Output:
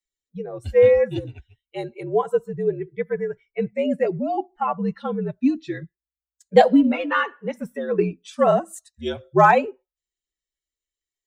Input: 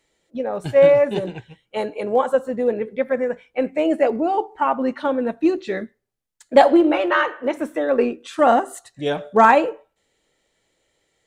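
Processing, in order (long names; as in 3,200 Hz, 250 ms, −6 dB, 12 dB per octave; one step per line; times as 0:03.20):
spectral dynamics exaggerated over time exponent 1.5
frequency shifter −61 Hz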